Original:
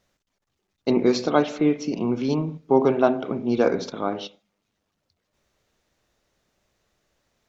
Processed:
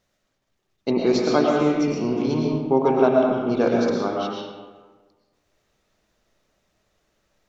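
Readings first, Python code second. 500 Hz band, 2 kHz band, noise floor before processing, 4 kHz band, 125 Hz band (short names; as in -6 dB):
+2.0 dB, +1.5 dB, -78 dBFS, +1.0 dB, +1.5 dB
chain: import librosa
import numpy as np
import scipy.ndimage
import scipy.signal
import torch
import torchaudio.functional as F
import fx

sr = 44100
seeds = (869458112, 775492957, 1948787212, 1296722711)

y = fx.rev_freeverb(x, sr, rt60_s=1.4, hf_ratio=0.6, predelay_ms=75, drr_db=-1.0)
y = y * librosa.db_to_amplitude(-1.5)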